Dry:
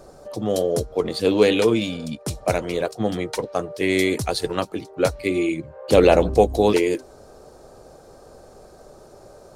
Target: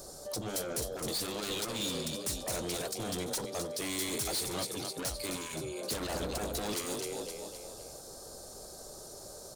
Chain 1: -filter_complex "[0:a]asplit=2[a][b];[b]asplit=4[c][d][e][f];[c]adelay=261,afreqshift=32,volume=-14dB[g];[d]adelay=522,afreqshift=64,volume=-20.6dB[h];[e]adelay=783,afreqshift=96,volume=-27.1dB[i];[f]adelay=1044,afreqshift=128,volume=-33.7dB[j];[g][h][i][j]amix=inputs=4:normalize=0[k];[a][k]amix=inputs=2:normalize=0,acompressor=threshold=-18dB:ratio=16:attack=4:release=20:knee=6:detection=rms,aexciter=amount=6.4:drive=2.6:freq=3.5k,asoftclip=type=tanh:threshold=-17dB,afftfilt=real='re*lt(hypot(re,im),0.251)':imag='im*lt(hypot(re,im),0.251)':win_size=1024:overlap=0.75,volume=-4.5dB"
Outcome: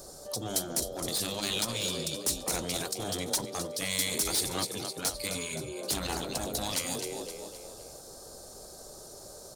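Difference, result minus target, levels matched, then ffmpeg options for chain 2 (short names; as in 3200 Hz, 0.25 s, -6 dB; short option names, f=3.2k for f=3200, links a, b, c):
soft clip: distortion -6 dB
-filter_complex "[0:a]asplit=2[a][b];[b]asplit=4[c][d][e][f];[c]adelay=261,afreqshift=32,volume=-14dB[g];[d]adelay=522,afreqshift=64,volume=-20.6dB[h];[e]adelay=783,afreqshift=96,volume=-27.1dB[i];[f]adelay=1044,afreqshift=128,volume=-33.7dB[j];[g][h][i][j]amix=inputs=4:normalize=0[k];[a][k]amix=inputs=2:normalize=0,acompressor=threshold=-18dB:ratio=16:attack=4:release=20:knee=6:detection=rms,aexciter=amount=6.4:drive=2.6:freq=3.5k,asoftclip=type=tanh:threshold=-26.5dB,afftfilt=real='re*lt(hypot(re,im),0.251)':imag='im*lt(hypot(re,im),0.251)':win_size=1024:overlap=0.75,volume=-4.5dB"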